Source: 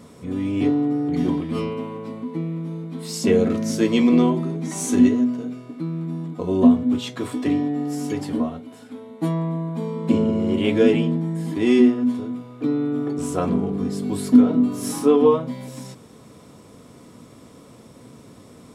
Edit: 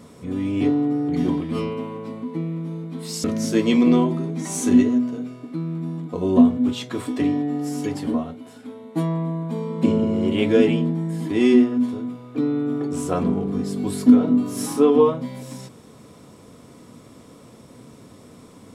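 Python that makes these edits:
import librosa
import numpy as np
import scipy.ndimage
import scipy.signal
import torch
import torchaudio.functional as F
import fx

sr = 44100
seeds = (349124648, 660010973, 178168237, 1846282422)

y = fx.edit(x, sr, fx.cut(start_s=3.24, length_s=0.26), tone=tone)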